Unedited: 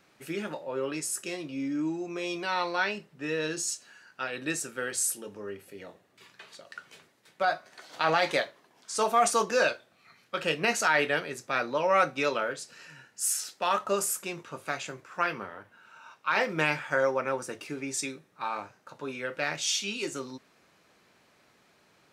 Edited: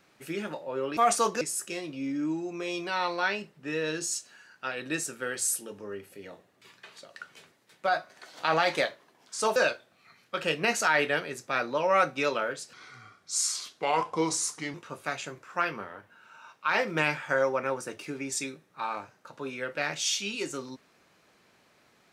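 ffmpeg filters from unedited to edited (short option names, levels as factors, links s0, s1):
-filter_complex "[0:a]asplit=6[s0][s1][s2][s3][s4][s5];[s0]atrim=end=0.972[s6];[s1]atrim=start=9.118:end=9.562[s7];[s2]atrim=start=0.968:end=9.122[s8];[s3]atrim=start=9.558:end=12.734[s9];[s4]atrim=start=12.73:end=14.36,asetpts=PTS-STARTPTS,asetrate=35721,aresample=44100,atrim=end_sample=88744,asetpts=PTS-STARTPTS[s10];[s5]atrim=start=14.356[s11];[s6][s7]acrossfade=d=0.004:c1=hsin:c2=hsin[s12];[s12][s8]acrossfade=d=0.004:c1=hsin:c2=hsin[s13];[s13][s9]acrossfade=d=0.004:c1=hsin:c2=hsin[s14];[s14][s10]acrossfade=d=0.004:c1=hsin:c2=hsin[s15];[s15][s11]acrossfade=d=0.004:c1=hsin:c2=hsin"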